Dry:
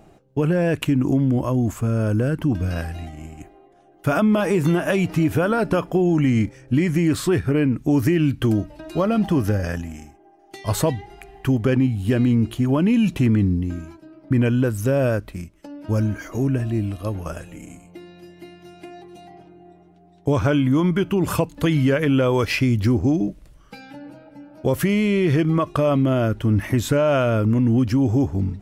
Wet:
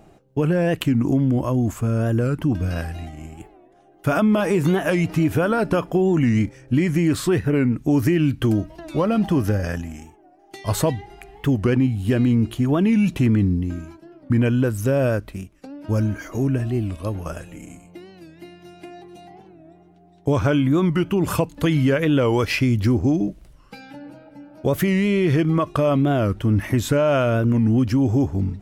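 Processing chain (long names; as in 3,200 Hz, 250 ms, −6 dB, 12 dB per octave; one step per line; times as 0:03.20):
wow of a warped record 45 rpm, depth 160 cents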